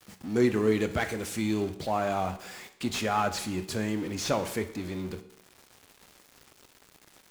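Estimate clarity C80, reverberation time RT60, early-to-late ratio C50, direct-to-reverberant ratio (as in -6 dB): 15.0 dB, 0.75 s, 12.5 dB, 9.5 dB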